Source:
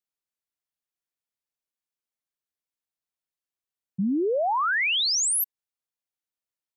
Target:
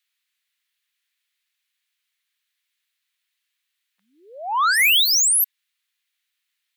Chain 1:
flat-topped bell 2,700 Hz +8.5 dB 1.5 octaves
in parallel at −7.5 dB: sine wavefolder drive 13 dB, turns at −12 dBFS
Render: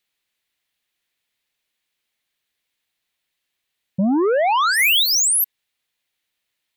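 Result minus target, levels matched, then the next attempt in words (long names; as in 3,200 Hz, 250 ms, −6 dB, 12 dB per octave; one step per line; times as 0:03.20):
1,000 Hz band +3.5 dB
high-pass filter 1,200 Hz 24 dB per octave
flat-topped bell 2,700 Hz +8.5 dB 1.5 octaves
in parallel at −7.5 dB: sine wavefolder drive 13 dB, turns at −12 dBFS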